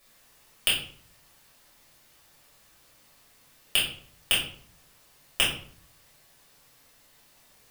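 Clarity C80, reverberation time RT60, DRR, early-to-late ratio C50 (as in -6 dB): 9.5 dB, 0.55 s, -8.0 dB, 4.5 dB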